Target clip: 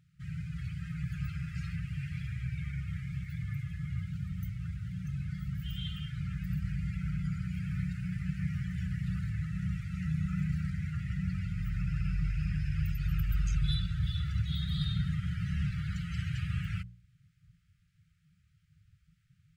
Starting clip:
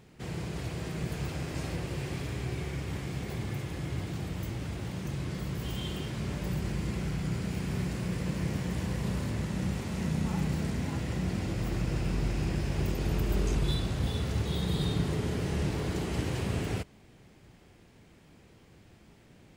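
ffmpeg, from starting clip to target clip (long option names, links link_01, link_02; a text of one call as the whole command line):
ffmpeg -i in.wav -af "afftfilt=real='re*(1-between(b*sr/4096,190,1200))':imag='im*(1-between(b*sr/4096,190,1200))':win_size=4096:overlap=0.75,afftdn=noise_reduction=16:noise_floor=-43,bandreject=frequency=58.67:width_type=h:width=4,bandreject=frequency=117.34:width_type=h:width=4,bandreject=frequency=176.01:width_type=h:width=4,bandreject=frequency=234.68:width_type=h:width=4,bandreject=frequency=293.35:width_type=h:width=4,bandreject=frequency=352.02:width_type=h:width=4,bandreject=frequency=410.69:width_type=h:width=4,bandreject=frequency=469.36:width_type=h:width=4,bandreject=frequency=528.03:width_type=h:width=4" out.wav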